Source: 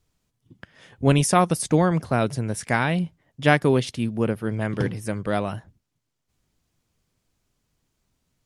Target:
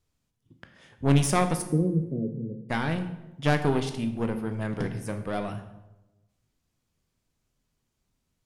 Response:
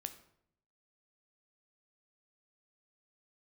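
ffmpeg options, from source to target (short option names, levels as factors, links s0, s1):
-filter_complex "[0:a]aeval=exprs='(tanh(4.47*val(0)+0.7)-tanh(0.7))/4.47':c=same,asplit=3[s0][s1][s2];[s0]afade=t=out:st=1.61:d=0.02[s3];[s1]asuperpass=centerf=240:order=12:qfactor=0.65,afade=t=in:st=1.61:d=0.02,afade=t=out:st=2.69:d=0.02[s4];[s2]afade=t=in:st=2.69:d=0.02[s5];[s3][s4][s5]amix=inputs=3:normalize=0[s6];[1:a]atrim=start_sample=2205,asetrate=29547,aresample=44100[s7];[s6][s7]afir=irnorm=-1:irlink=0"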